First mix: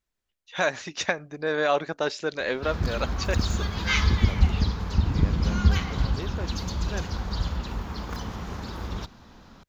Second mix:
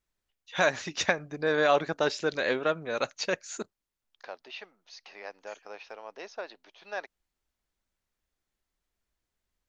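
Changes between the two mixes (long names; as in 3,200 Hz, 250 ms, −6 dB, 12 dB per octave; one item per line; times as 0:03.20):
second voice: add high-pass with resonance 700 Hz, resonance Q 1.7
background: muted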